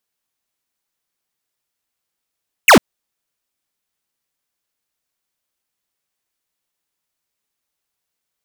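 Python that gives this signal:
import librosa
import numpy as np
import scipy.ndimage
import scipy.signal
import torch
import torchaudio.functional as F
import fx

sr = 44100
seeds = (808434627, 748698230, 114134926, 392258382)

y = fx.laser_zap(sr, level_db=-6.0, start_hz=3000.0, end_hz=170.0, length_s=0.1, wave='square')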